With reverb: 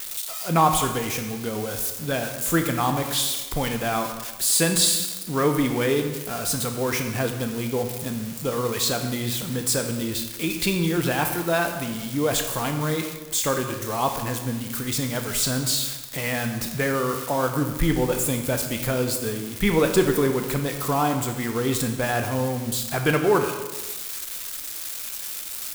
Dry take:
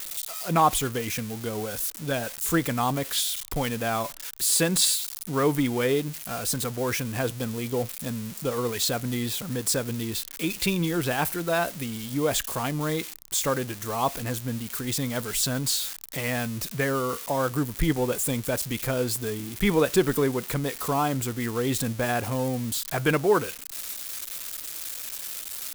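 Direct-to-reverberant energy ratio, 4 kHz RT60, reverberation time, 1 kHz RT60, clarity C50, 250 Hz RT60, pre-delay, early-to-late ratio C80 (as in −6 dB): 5.0 dB, 1.0 s, 1.2 s, 1.2 s, 7.0 dB, 1.3 s, 14 ms, 8.5 dB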